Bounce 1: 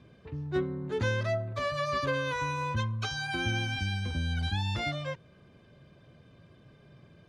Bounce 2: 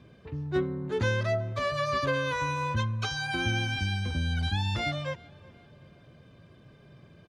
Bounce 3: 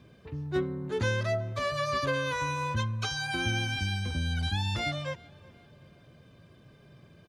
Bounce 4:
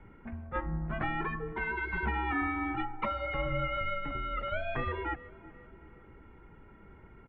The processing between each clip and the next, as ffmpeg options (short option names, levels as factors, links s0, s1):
-filter_complex "[0:a]asplit=2[s0][s1];[s1]adelay=373,lowpass=f=4300:p=1,volume=0.0708,asplit=2[s2][s3];[s3]adelay=373,lowpass=f=4300:p=1,volume=0.49,asplit=2[s4][s5];[s5]adelay=373,lowpass=f=4300:p=1,volume=0.49[s6];[s0][s2][s4][s6]amix=inputs=4:normalize=0,volume=1.26"
-af "highshelf=f=6600:g=8,volume=0.841"
-af "afftfilt=real='re*lt(hypot(re,im),0.141)':imag='im*lt(hypot(re,im),0.141)':win_size=1024:overlap=0.75,highpass=f=170:t=q:w=0.5412,highpass=f=170:t=q:w=1.307,lowpass=f=2400:t=q:w=0.5176,lowpass=f=2400:t=q:w=0.7071,lowpass=f=2400:t=q:w=1.932,afreqshift=-210,volume=1.88"